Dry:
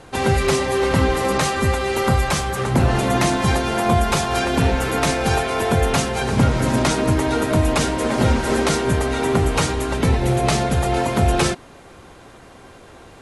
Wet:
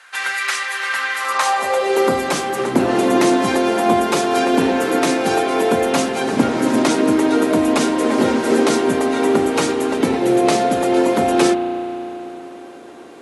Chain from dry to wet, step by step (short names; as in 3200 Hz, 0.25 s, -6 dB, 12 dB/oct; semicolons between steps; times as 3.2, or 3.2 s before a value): spring tank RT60 3.6 s, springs 34 ms, chirp 60 ms, DRR 9.5 dB; high-pass sweep 1600 Hz -> 290 Hz, 1.15–2.15